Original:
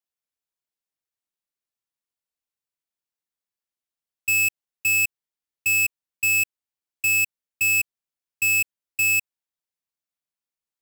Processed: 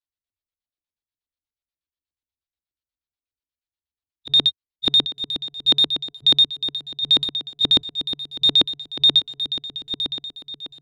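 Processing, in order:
phase-vocoder pitch shift without resampling +6 semitones
low shelf with overshoot 120 Hz +12.5 dB, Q 1.5
on a send: feedback delay with all-pass diffusion 876 ms, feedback 40%, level −8.5 dB
on the sum: auto-filter low-pass square 8.3 Hz 290–4,000 Hz

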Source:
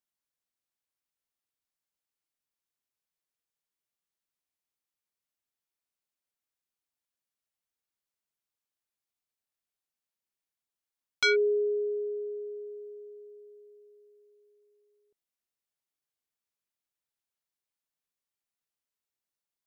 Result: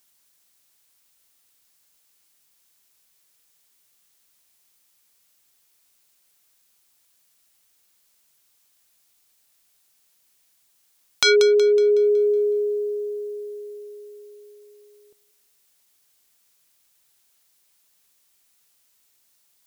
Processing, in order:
downward compressor 5 to 1, threshold −33 dBFS, peak gain reduction 10 dB
high-shelf EQ 3,000 Hz +9.5 dB
feedback echo with a high-pass in the loop 185 ms, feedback 42%, high-pass 450 Hz, level −14 dB
dynamic equaliser 2,100 Hz, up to −7 dB, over −51 dBFS, Q 1.2
boost into a limiter +19.5 dB
level −1 dB

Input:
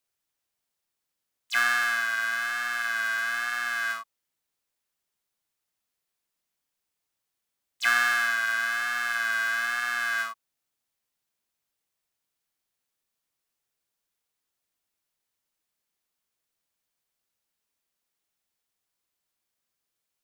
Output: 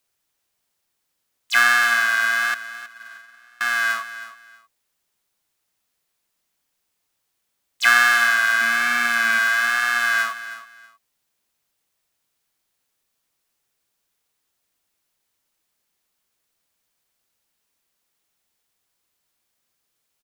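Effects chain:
0:02.54–0:03.61: noise gate −24 dBFS, range −31 dB
0:08.61–0:09.39: hollow resonant body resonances 260/2,300 Hz, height 14 dB
repeating echo 319 ms, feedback 22%, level −14 dB
level +8 dB

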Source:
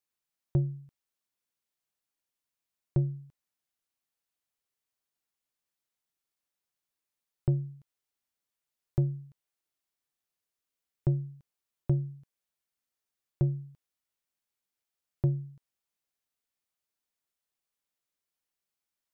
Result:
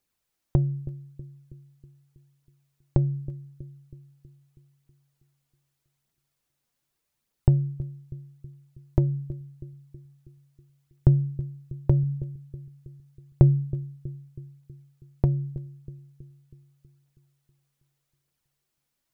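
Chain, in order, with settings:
low-shelf EQ 370 Hz +7.5 dB
downward compressor 4 to 1, threshold −24 dBFS, peak gain reduction 8 dB
phase shifter 0.82 Hz, delay 4.3 ms, feedback 35%
on a send: bucket-brigade delay 321 ms, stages 1,024, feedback 55%, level −15 dB
on the sum: level +7 dB

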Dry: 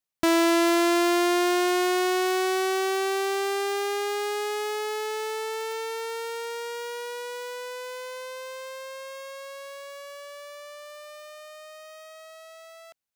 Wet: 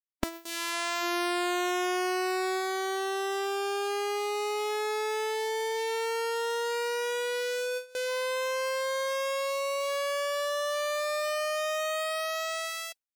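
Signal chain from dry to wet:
camcorder AGC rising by 59 dB per second
noise reduction from a noise print of the clip's start 18 dB
noise gate with hold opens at −23 dBFS
parametric band 130 Hz −15 dB 0.97 octaves
level −3.5 dB

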